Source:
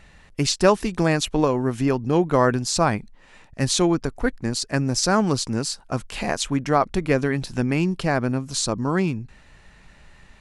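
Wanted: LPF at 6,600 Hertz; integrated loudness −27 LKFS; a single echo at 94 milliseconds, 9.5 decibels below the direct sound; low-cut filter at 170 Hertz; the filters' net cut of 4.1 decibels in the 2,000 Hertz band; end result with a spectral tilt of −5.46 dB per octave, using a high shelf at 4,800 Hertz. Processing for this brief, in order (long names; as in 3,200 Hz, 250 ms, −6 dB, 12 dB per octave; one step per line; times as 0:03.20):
high-pass filter 170 Hz
low-pass filter 6,600 Hz
parametric band 2,000 Hz −4.5 dB
high-shelf EQ 4,800 Hz −6.5 dB
single-tap delay 94 ms −9.5 dB
level −3.5 dB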